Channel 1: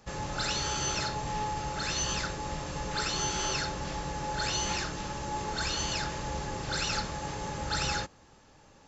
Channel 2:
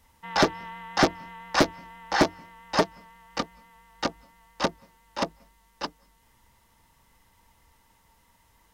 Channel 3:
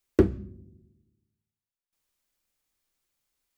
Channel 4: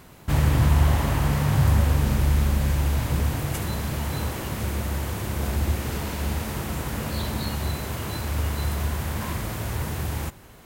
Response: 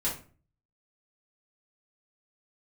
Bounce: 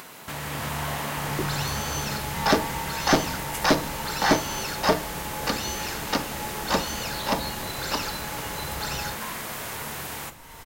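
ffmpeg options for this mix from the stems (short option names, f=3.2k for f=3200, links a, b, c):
-filter_complex "[0:a]adelay=1100,volume=-1.5dB[a];[1:a]alimiter=limit=-15.5dB:level=0:latency=1,adelay=2100,volume=2dB,asplit=2[b][c];[c]volume=-12.5dB[d];[2:a]adelay=1200,volume=-12dB[e];[3:a]highpass=f=850:p=1,dynaudnorm=f=130:g=7:m=9.5dB,volume=-10dB,asplit=2[f][g];[g]volume=-13.5dB[h];[4:a]atrim=start_sample=2205[i];[d][h]amix=inputs=2:normalize=0[j];[j][i]afir=irnorm=-1:irlink=0[k];[a][b][e][f][k]amix=inputs=5:normalize=0,acompressor=mode=upward:threshold=-29dB:ratio=2.5"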